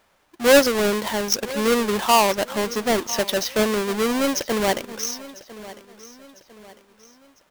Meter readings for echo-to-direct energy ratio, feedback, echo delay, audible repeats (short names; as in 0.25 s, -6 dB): -17.0 dB, 42%, 1.001 s, 3